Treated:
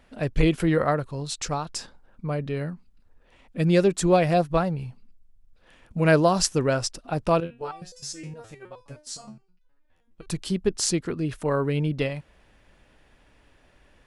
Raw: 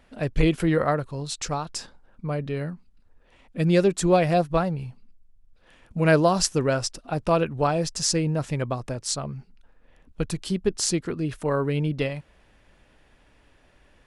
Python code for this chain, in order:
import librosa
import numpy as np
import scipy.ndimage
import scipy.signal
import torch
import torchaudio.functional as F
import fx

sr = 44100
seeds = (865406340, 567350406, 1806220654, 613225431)

y = fx.resonator_held(x, sr, hz=9.6, low_hz=85.0, high_hz=500.0, at=(7.4, 10.26))